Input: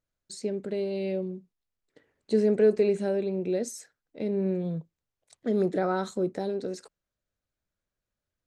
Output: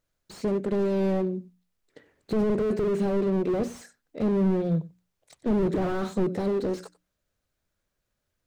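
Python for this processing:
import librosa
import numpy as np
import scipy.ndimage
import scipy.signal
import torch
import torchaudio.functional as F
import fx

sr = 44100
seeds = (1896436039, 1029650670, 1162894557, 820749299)

p1 = fx.hum_notches(x, sr, base_hz=60, count=5)
p2 = p1 + fx.echo_single(p1, sr, ms=93, db=-21.0, dry=0)
p3 = fx.slew_limit(p2, sr, full_power_hz=11.0)
y = F.gain(torch.from_numpy(p3), 7.5).numpy()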